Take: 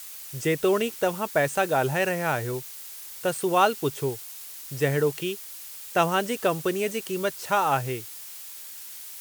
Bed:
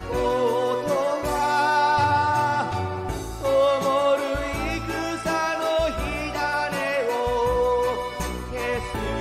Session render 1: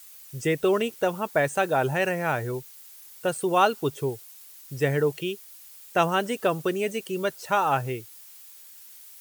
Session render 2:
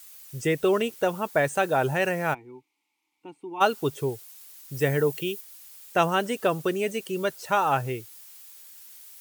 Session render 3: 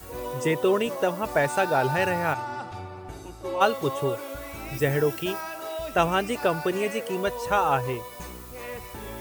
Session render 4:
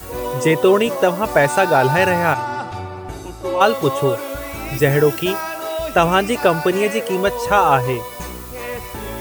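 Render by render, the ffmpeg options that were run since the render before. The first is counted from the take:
-af "afftdn=nr=9:nf=-41"
-filter_complex "[0:a]asplit=3[s0][s1][s2];[s0]afade=t=out:st=2.33:d=0.02[s3];[s1]asplit=3[s4][s5][s6];[s4]bandpass=f=300:t=q:w=8,volume=1[s7];[s5]bandpass=f=870:t=q:w=8,volume=0.501[s8];[s6]bandpass=f=2240:t=q:w=8,volume=0.355[s9];[s7][s8][s9]amix=inputs=3:normalize=0,afade=t=in:st=2.33:d=0.02,afade=t=out:st=3.6:d=0.02[s10];[s2]afade=t=in:st=3.6:d=0.02[s11];[s3][s10][s11]amix=inputs=3:normalize=0,asettb=1/sr,asplit=3[s12][s13][s14];[s12]atrim=end=4.744[s15];[s13]atrim=start=4.74:end=5.41,asetpts=PTS-STARTPTS,afade=t=in:d=0.004:c=qsin,afade=t=out:st=0.666:d=0.004:c=qsin,highshelf=f=11000:g=9[s16];[s14]atrim=start=5.406[s17];[s15][s16]acrossfade=d=0.004:c1=hsin:c2=qsin[s18];[s18][s17]acrossfade=d=0.004:c1=qsin:c2=hsin"
-filter_complex "[1:a]volume=0.282[s0];[0:a][s0]amix=inputs=2:normalize=0"
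-af "volume=2.82,alimiter=limit=0.794:level=0:latency=1"

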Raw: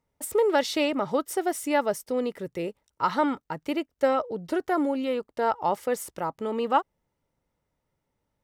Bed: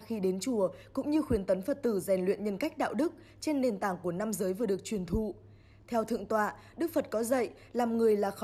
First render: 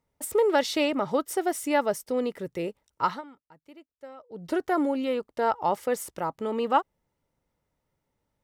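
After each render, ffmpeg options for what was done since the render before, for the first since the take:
-filter_complex "[0:a]asplit=3[s0][s1][s2];[s0]atrim=end=3.22,asetpts=PTS-STARTPTS,afade=t=out:st=3.05:d=0.17:silence=0.0841395[s3];[s1]atrim=start=3.22:end=4.29,asetpts=PTS-STARTPTS,volume=0.0841[s4];[s2]atrim=start=4.29,asetpts=PTS-STARTPTS,afade=t=in:d=0.17:silence=0.0841395[s5];[s3][s4][s5]concat=n=3:v=0:a=1"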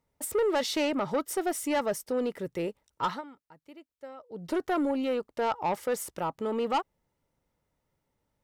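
-af "asoftclip=type=tanh:threshold=0.0841"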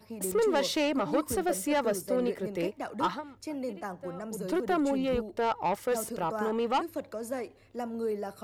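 -filter_complex "[1:a]volume=0.501[s0];[0:a][s0]amix=inputs=2:normalize=0"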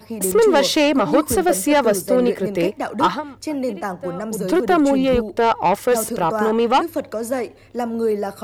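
-af "volume=3.98"

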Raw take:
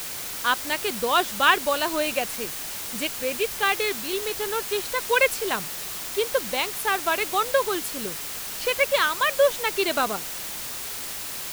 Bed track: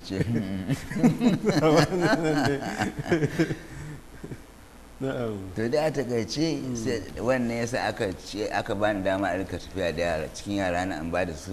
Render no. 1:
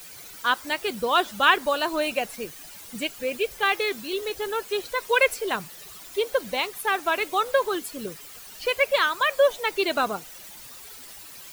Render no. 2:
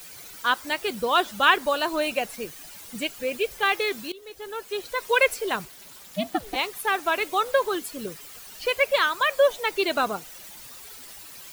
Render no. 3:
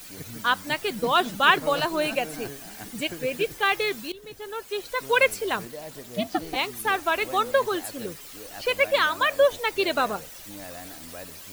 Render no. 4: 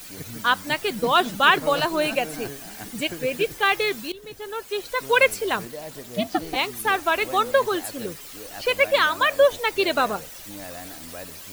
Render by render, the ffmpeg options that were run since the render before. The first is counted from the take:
-af "afftdn=nr=13:nf=-34"
-filter_complex "[0:a]asettb=1/sr,asplit=3[s0][s1][s2];[s0]atrim=end=5.654[s3];[s1]atrim=start=5.65:end=6.56,asetpts=PTS-STARTPTS,afade=t=in:d=0.004:c=qsin,afade=t=out:st=0.906:d=0.004:c=qsin,aeval=exprs='val(0)*sin(2*PI*210*n/s)':c=same[s4];[s2]atrim=start=6.556[s5];[s3][s4]acrossfade=d=0.004:c1=hsin:c2=qsin[s6];[s6][s5]acrossfade=d=0.004:c1=qsin:c2=hsin,asplit=2[s7][s8];[s7]atrim=end=4.12,asetpts=PTS-STARTPTS,afade=t=out:st=4.116:d=0.004:c=hsin:silence=0.1[s9];[s8]atrim=start=4.12,asetpts=PTS-STARTPTS,afade=t=in:d=0.96:silence=0.1[s10];[s9][s10]concat=n=2:v=0:a=1"
-filter_complex "[1:a]volume=0.178[s0];[0:a][s0]amix=inputs=2:normalize=0"
-af "volume=1.33,alimiter=limit=0.708:level=0:latency=1"

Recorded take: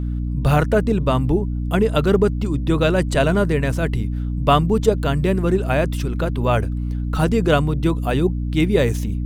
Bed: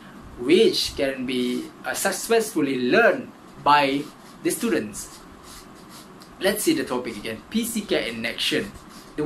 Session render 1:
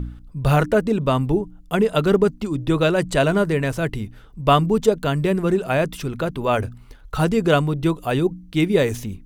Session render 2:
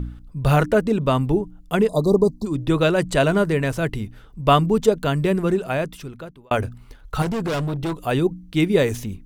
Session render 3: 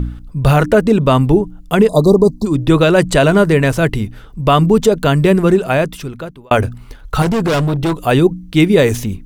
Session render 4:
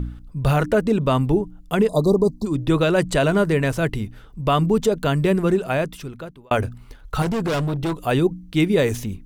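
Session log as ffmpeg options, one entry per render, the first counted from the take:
-af "bandreject=f=60:t=h:w=4,bandreject=f=120:t=h:w=4,bandreject=f=180:t=h:w=4,bandreject=f=240:t=h:w=4,bandreject=f=300:t=h:w=4"
-filter_complex "[0:a]asplit=3[s0][s1][s2];[s0]afade=t=out:st=1.87:d=0.02[s3];[s1]asuperstop=centerf=2100:order=20:qfactor=0.78,afade=t=in:st=1.87:d=0.02,afade=t=out:st=2.45:d=0.02[s4];[s2]afade=t=in:st=2.45:d=0.02[s5];[s3][s4][s5]amix=inputs=3:normalize=0,asettb=1/sr,asplit=3[s6][s7][s8];[s6]atrim=end=7.224[s9];[s7]atrim=start=7.22:end=7.98,asetpts=PTS-STARTPTS,afade=t=in:d=0.004:c=qsin,afade=t=out:st=0.756:d=0.004:c=qsin,volume=11.9,asoftclip=hard,volume=0.0841[s10];[s8]atrim=start=7.976[s11];[s9][s10]acrossfade=d=0.004:c1=hsin:c2=qsin[s12];[s12][s11]acrossfade=d=0.004:c1=qsin:c2=hsin,asplit=2[s13][s14];[s13]atrim=end=6.51,asetpts=PTS-STARTPTS,afade=t=out:st=5.4:d=1.11[s15];[s14]atrim=start=6.51,asetpts=PTS-STARTPTS,afade=t=in:d=0.004:c=hsin[s16];[s15][s16]concat=n=2:v=0:a=1"
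-af "alimiter=level_in=2.82:limit=0.891:release=50:level=0:latency=1"
-af "volume=0.422"

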